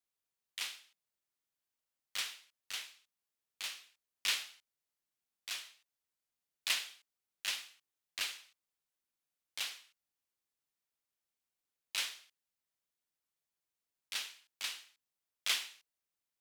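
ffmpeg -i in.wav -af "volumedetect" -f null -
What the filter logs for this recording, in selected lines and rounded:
mean_volume: -45.8 dB
max_volume: -18.0 dB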